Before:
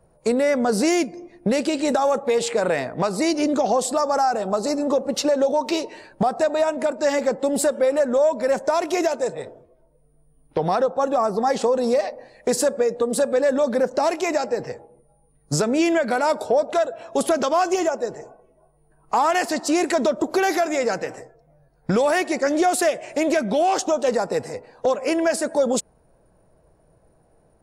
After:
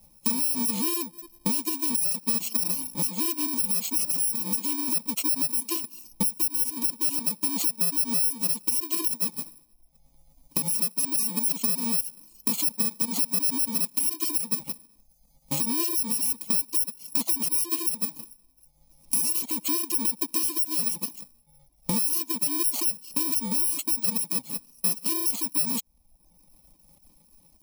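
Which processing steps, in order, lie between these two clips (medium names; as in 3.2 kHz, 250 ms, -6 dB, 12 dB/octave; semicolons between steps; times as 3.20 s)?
bit-reversed sample order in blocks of 64 samples; compression 3:1, threshold -29 dBFS, peak gain reduction 11 dB; reverb removal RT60 0.96 s; static phaser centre 410 Hz, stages 6; trim +4.5 dB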